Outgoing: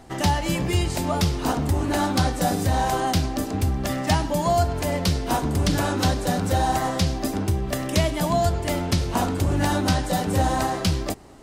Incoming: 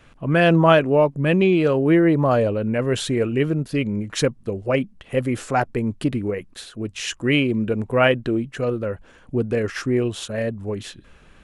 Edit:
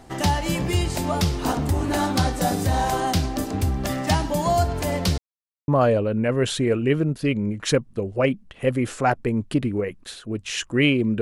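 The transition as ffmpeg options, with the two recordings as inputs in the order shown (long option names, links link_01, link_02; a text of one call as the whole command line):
ffmpeg -i cue0.wav -i cue1.wav -filter_complex "[0:a]apad=whole_dur=11.21,atrim=end=11.21,asplit=2[link_01][link_02];[link_01]atrim=end=5.18,asetpts=PTS-STARTPTS,afade=type=out:start_time=5.176:duration=0.004:curve=hsin[link_03];[link_02]atrim=start=5.18:end=5.68,asetpts=PTS-STARTPTS,volume=0[link_04];[1:a]atrim=start=2.18:end=7.71,asetpts=PTS-STARTPTS,afade=type=in:duration=0.004:curve=hsin[link_05];[link_03][link_04][link_05]concat=n=3:v=0:a=1" out.wav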